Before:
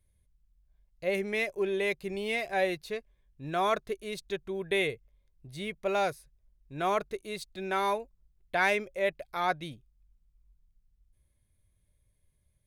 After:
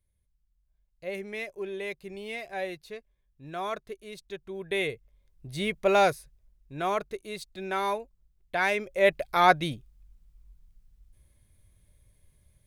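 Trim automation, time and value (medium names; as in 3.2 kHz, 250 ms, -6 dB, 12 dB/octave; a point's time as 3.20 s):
4.28 s -5.5 dB
5.59 s +7 dB
6.11 s +7 dB
6.89 s 0 dB
8.74 s 0 dB
9.14 s +9.5 dB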